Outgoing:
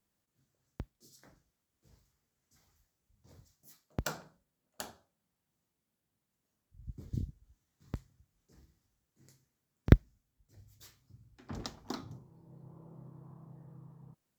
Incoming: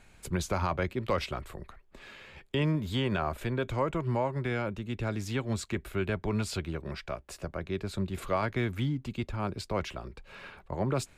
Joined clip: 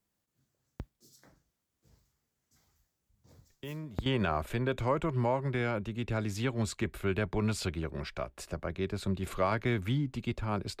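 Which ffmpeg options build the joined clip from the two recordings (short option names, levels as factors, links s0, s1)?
-filter_complex "[1:a]asplit=2[s0][s1];[0:a]apad=whole_dur=10.8,atrim=end=10.8,atrim=end=4.062[s2];[s1]atrim=start=2.968:end=9.71[s3];[s0]atrim=start=2.41:end=2.97,asetpts=PTS-STARTPTS,volume=0.224,afade=t=in:d=0.004:c=hsin,afade=t=out:st=0.556:d=0.004:c=hsin,adelay=3500[s4];[s2][s3]acrossfade=d=0.004:c1=hsin:c2=hsin[s5];[s5][s4]amix=inputs=2:normalize=0"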